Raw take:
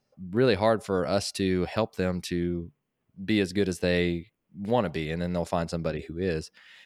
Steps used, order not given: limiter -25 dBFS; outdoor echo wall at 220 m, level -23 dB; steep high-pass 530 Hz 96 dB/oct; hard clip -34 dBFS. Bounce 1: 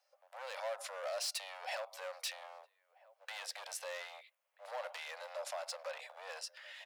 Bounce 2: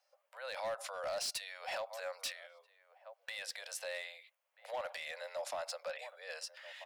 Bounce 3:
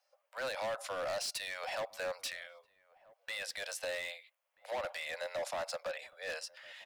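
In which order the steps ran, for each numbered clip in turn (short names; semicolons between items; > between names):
limiter > outdoor echo > hard clip > steep high-pass; outdoor echo > limiter > steep high-pass > hard clip; steep high-pass > limiter > hard clip > outdoor echo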